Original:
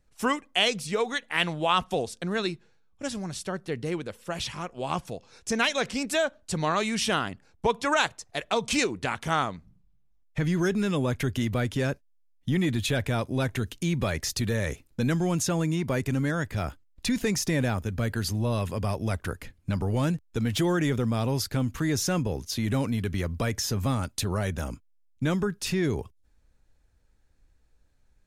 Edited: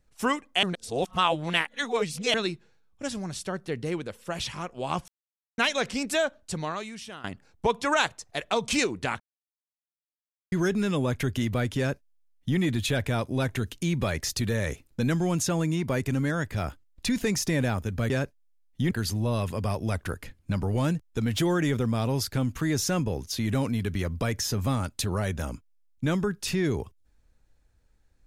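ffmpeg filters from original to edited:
-filter_complex "[0:a]asplit=10[a][b][c][d][e][f][g][h][i][j];[a]atrim=end=0.632[k];[b]atrim=start=0.628:end=2.342,asetpts=PTS-STARTPTS,areverse[l];[c]atrim=start=2.338:end=5.08,asetpts=PTS-STARTPTS,afade=t=out:st=2.738:d=0.004:c=hsin[m];[d]atrim=start=5.08:end=5.58,asetpts=PTS-STARTPTS,volume=0[n];[e]atrim=start=5.58:end=7.24,asetpts=PTS-STARTPTS,afade=t=in:d=0.004:c=hsin,afade=t=out:st=0.81:d=0.85:c=qua:silence=0.141254[o];[f]atrim=start=7.24:end=9.2,asetpts=PTS-STARTPTS,afade=t=in:d=0.004:c=hsin:silence=0.141254,afade=t=out:st=1.956:d=0.004:c=hsin[p];[g]atrim=start=9.2:end=10.52,asetpts=PTS-STARTPTS,volume=0[q];[h]atrim=start=10.52:end=18.102,asetpts=PTS-STARTPTS,afade=t=in:d=0.004:c=hsin[r];[i]atrim=start=11.778:end=12.592[s];[j]atrim=start=18.098[t];[k][l]acrossfade=d=0.004:c1=hsin:c2=hsin[u];[m][n][o][p][q][r]concat=n=6:v=0:a=1[v];[u][v]acrossfade=d=0.004:c1=hsin:c2=hsin[w];[w][s]acrossfade=d=0.004:c1=hsin:c2=hsin[x];[x][t]acrossfade=d=0.004:c1=hsin:c2=hsin"

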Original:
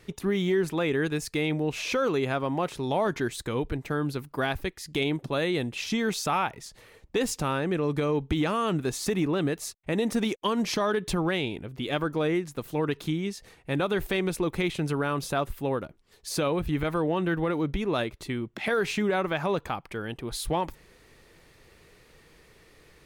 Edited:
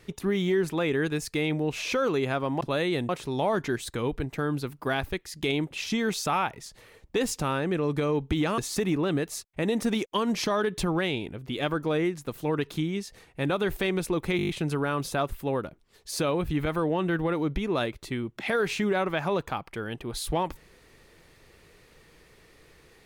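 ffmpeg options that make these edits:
-filter_complex "[0:a]asplit=11[a][b][c][d][e][f][g][h][i][j][k];[a]atrim=end=2.612[l];[b]atrim=start=5.228:end=5.712[m];[c]atrim=start=2.608:end=5.232[n];[d]atrim=start=5.708:end=8.582[o];[e]atrim=start=8.878:end=14.692[p];[f]atrim=start=14.668:end=14.692[q];[g]atrim=start=14.668:end=14.692[r];[h]atrim=start=14.668:end=14.692[s];[i]atrim=start=14.668:end=14.692[t];[j]atrim=start=14.668:end=14.692[u];[k]atrim=start=14.668[v];[l][m]acrossfade=d=0.004:c1=hsin:c2=hsin[w];[w][n]acrossfade=d=0.004:c1=hsin:c2=hsin[x];[x][o]acrossfade=d=0.004:c1=hsin:c2=hsin[y];[y][p]acrossfade=d=0.004:c1=hsin:c2=hsin[z];[z][q]acrossfade=d=0.004:c1=hsin:c2=hsin[aa];[aa][r]acrossfade=d=0.004:c1=hsin:c2=hsin[ab];[ab][s]acrossfade=d=0.004:c1=hsin:c2=hsin[ac];[ac][t]acrossfade=d=0.004:c1=hsin:c2=hsin[ad];[ad][u]acrossfade=d=0.004:c1=hsin:c2=hsin[ae];[ae][v]acrossfade=d=0.004:c1=hsin:c2=hsin"

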